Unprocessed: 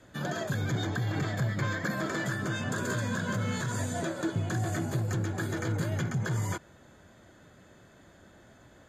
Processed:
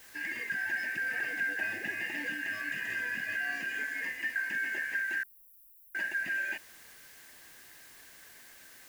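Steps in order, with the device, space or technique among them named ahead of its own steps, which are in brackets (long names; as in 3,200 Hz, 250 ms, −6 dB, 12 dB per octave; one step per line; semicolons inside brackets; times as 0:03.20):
split-band scrambled radio (band-splitting scrambler in four parts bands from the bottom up 2143; band-pass filter 310–3,100 Hz; white noise bed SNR 19 dB)
0:05.23–0:05.95: inverse Chebyshev band-stop filter 200–3,500 Hz, stop band 70 dB
level −3 dB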